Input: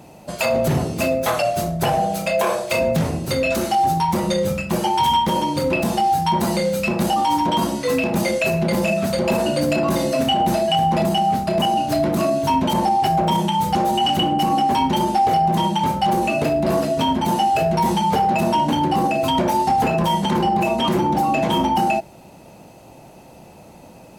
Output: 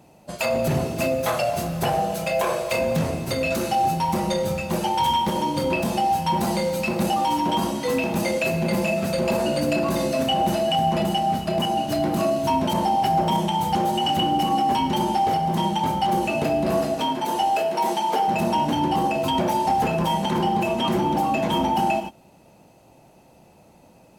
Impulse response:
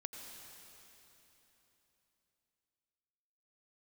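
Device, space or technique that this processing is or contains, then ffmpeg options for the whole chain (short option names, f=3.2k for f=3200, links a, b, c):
keyed gated reverb: -filter_complex "[0:a]asettb=1/sr,asplit=3[a][b][c];[a]atrim=end=16.944[d];[b]atrim=start=16.94:end=18.28,asetpts=PTS-STARTPTS,afade=t=in:d=0.004:c=qsin,afade=t=out:st=1.336:d=0.004:c=qsin,highpass=f=280:w=0.5412,highpass=f=280:w=1.3066[e];[c]atrim=start=18.276[f];[d][e]acrossfade=d=0.004:c1=hsin:c2=qsin[g];[g][f]acrossfade=d=0.004:c1=qsin:c2=hsin,asplit=3[h][i][j];[1:a]atrim=start_sample=2205[k];[i][k]afir=irnorm=-1:irlink=0[l];[j]apad=whole_len=1066384[m];[l][m]sidechaingate=range=-33dB:threshold=-30dB:ratio=16:detection=peak,volume=3dB[n];[h][n]amix=inputs=2:normalize=0,volume=-9dB"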